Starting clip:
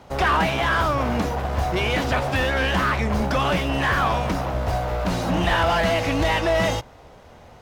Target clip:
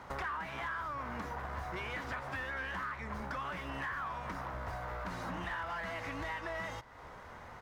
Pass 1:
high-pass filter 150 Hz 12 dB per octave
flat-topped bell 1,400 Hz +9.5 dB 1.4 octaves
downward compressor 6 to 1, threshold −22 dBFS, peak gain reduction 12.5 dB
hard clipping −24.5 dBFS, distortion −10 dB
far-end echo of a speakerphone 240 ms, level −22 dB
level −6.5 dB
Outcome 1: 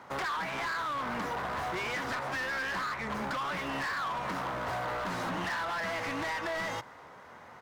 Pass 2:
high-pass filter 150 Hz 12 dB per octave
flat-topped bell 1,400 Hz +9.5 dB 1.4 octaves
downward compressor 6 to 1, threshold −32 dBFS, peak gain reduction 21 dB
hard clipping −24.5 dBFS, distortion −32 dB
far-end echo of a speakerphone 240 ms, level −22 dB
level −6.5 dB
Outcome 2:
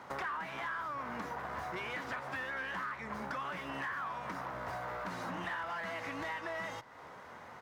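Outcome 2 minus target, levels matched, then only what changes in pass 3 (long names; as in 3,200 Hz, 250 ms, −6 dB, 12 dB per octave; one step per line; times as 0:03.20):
125 Hz band −5.5 dB
remove: high-pass filter 150 Hz 12 dB per octave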